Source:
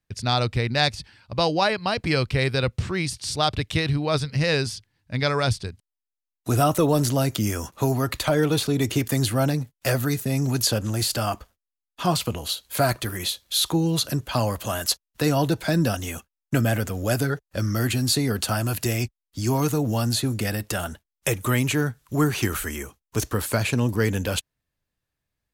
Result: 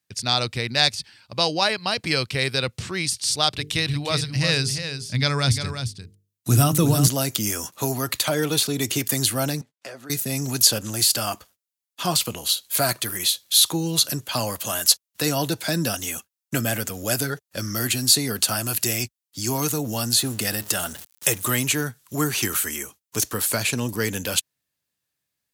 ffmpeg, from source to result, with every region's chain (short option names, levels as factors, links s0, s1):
-filter_complex "[0:a]asettb=1/sr,asplit=3[s0][s1][s2];[s0]atrim=end=3.494[s3];[s1]atrim=start=3.49:end=7.08,asetpts=PTS-STARTPTS,afade=t=in:d=0.004:c=qsin,afade=t=out:st=3.586:d=0.004:c=qsin,bandreject=f=50:t=h:w=6,bandreject=f=100:t=h:w=6,bandreject=f=150:t=h:w=6,bandreject=f=200:t=h:w=6,bandreject=f=250:t=h:w=6,bandreject=f=300:t=h:w=6,bandreject=f=350:t=h:w=6,bandreject=f=400:t=h:w=6,bandreject=f=450:t=h:w=6,asubboost=boost=6.5:cutoff=230,aecho=1:1:349:0.355,atrim=end_sample=158319[s4];[s2]atrim=start=7.076[s5];[s3][s4]acrossfade=d=0.004:c1=hsin:c2=qsin[s6];[s6][s5]acrossfade=d=0.004:c1=qsin:c2=hsin,asettb=1/sr,asplit=3[s7][s8][s9];[s7]atrim=end=9.614[s10];[s8]atrim=start=9.61:end=10.1,asetpts=PTS-STARTPTS,afade=t=in:d=0.004:c=qsin,afade=t=out:st=0.486:d=0.004:c=qsin,highshelf=f=2400:g=-11,acompressor=threshold=0.0178:ratio=2.5:attack=3.2:release=140:knee=1:detection=peak,highpass=260,lowpass=7200[s11];[s9]atrim=start=10.096[s12];[s10][s11]acrossfade=d=0.004:c1=hsin:c2=qsin[s13];[s13][s12]acrossfade=d=0.004:c1=qsin:c2=hsin,asettb=1/sr,asplit=3[s14][s15][s16];[s14]atrim=end=20.184[s17];[s15]atrim=start=20.18:end=21.65,asetpts=PTS-STARTPTS,afade=t=in:d=0.004:c=qsin,afade=t=out:st=1.466:d=0.004:c=qsin,aeval=exprs='val(0)+0.5*0.0141*sgn(val(0))':c=same,bandreject=f=2300:w=14[s18];[s16]atrim=start=21.646[s19];[s17][s18]acrossfade=d=0.004:c1=hsin:c2=qsin[s20];[s20][s19]acrossfade=d=0.004:c1=qsin:c2=hsin,highpass=120,highshelf=f=2700:g=12,volume=0.708"